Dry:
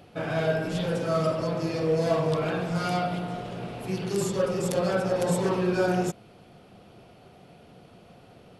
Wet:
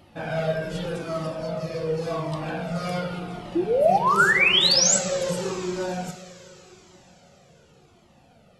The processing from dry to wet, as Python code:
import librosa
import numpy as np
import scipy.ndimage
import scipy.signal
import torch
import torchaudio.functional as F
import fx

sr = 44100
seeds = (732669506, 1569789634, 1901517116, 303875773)

y = fx.rider(x, sr, range_db=4, speed_s=2.0)
y = fx.spec_paint(y, sr, seeds[0], shape='rise', start_s=3.55, length_s=1.42, low_hz=320.0, high_hz=8000.0, level_db=-17.0)
y = fx.rev_double_slope(y, sr, seeds[1], early_s=0.53, late_s=4.9, knee_db=-18, drr_db=5.5)
y = fx.comb_cascade(y, sr, direction='falling', hz=0.87)
y = y * librosa.db_to_amplitude(1.5)